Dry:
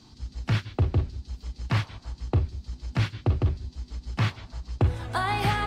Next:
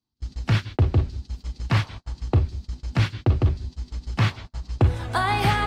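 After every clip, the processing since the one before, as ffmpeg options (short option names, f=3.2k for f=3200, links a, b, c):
-af "agate=range=-37dB:threshold=-39dB:ratio=16:detection=peak,volume=4dB"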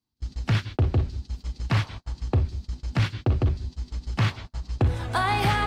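-af "asoftclip=type=tanh:threshold=-14.5dB"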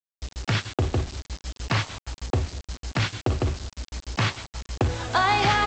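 -af "bass=f=250:g=-7,treble=f=4k:g=3,aresample=16000,acrusher=bits=6:mix=0:aa=0.000001,aresample=44100,volume=3.5dB"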